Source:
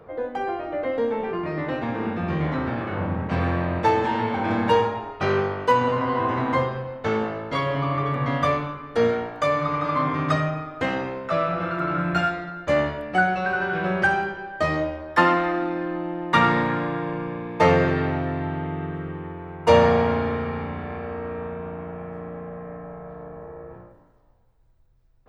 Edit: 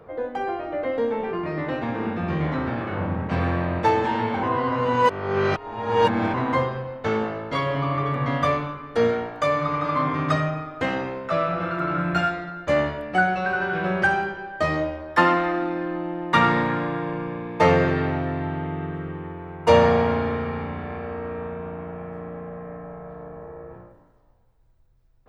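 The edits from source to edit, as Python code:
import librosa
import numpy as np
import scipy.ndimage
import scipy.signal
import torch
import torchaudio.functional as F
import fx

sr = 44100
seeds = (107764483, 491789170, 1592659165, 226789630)

y = fx.edit(x, sr, fx.reverse_span(start_s=4.43, length_s=1.91), tone=tone)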